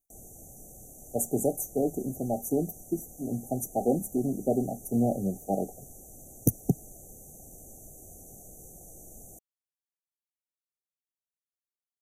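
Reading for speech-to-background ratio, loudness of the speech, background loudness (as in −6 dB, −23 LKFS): 17.0 dB, −30.5 LKFS, −47.5 LKFS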